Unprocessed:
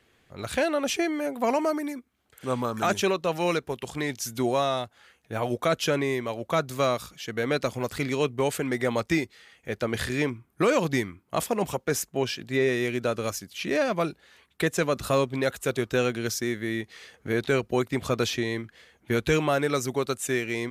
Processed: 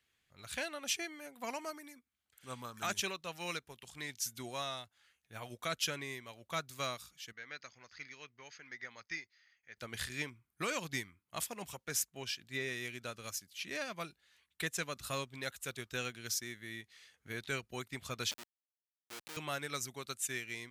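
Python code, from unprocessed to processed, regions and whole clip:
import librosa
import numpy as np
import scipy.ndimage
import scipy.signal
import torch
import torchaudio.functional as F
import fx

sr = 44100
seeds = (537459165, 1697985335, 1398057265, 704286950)

y = fx.chain(x, sr, fx.cheby_ripple(hz=6600.0, ripple_db=9),
    fx.low_shelf(hz=220.0, db=-7.0), at=(7.32, 9.77))
y = fx.chain(y, sr, fx.schmitt(flips_db=-24.5),
    fx.highpass(hz=330.0, slope=12), at=(18.31, 19.37))
y = fx.tone_stack(y, sr, knobs='5-5-5')
y = fx.upward_expand(y, sr, threshold_db=-49.0, expansion=1.5)
y = y * librosa.db_to_amplitude(3.5)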